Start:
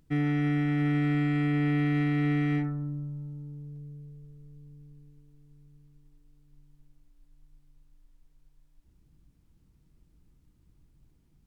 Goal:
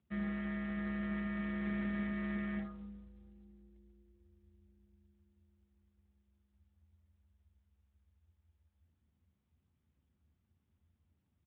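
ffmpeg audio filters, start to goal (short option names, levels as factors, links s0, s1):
-filter_complex "[0:a]afreqshift=-89,asplit=2[s0][s1];[s1]adelay=238,lowpass=f=1300:p=1,volume=0.0841,asplit=2[s2][s3];[s3]adelay=238,lowpass=f=1300:p=1,volume=0.23[s4];[s2][s4]amix=inputs=2:normalize=0[s5];[s0][s5]amix=inputs=2:normalize=0,volume=0.422" -ar 8000 -c:a libspeex -b:a 11k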